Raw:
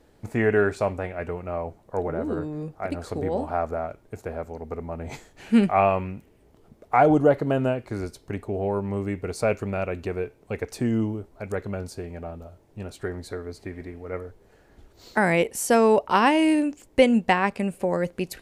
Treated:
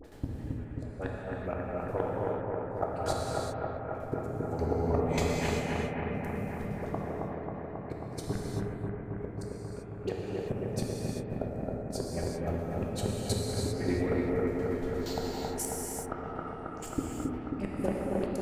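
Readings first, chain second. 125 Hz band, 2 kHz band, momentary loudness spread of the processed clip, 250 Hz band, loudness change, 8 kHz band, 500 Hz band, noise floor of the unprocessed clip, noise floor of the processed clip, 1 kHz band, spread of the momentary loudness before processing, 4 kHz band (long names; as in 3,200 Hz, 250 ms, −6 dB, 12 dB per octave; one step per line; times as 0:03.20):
−3.0 dB, −13.0 dB, 9 LU, −9.0 dB, −9.5 dB, −2.5 dB, −9.0 dB, −58 dBFS, −41 dBFS, −12.0 dB, 17 LU, −6.0 dB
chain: in parallel at +3 dB: downward compressor 4 to 1, threshold −34 dBFS, peak gain reduction 18.5 dB
on the sum: soft clipping −16.5 dBFS, distortion −11 dB
all-pass dispersion highs, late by 44 ms, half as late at 1,200 Hz
shaped tremolo saw down 8.5 Hz, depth 90%
gate with flip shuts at −22 dBFS, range −35 dB
on a send: bucket-brigade delay 270 ms, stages 4,096, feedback 80%, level −3 dB
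on the sum: reverb whose tail is shaped and stops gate 420 ms flat, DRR −2.5 dB
level +2.5 dB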